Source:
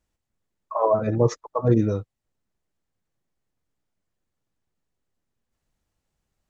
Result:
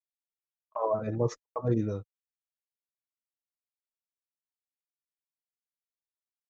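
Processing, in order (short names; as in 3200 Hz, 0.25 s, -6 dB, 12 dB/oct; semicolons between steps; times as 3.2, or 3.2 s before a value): gate -29 dBFS, range -51 dB; gain -8.5 dB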